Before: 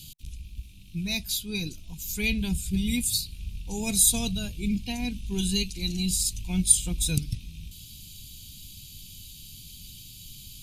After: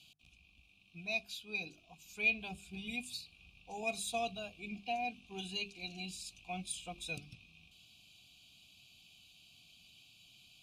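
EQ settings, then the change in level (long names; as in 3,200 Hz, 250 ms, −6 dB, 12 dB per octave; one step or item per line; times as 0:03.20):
formant filter a
mains-hum notches 50/100/150/200/250/300/350/400 Hz
+7.5 dB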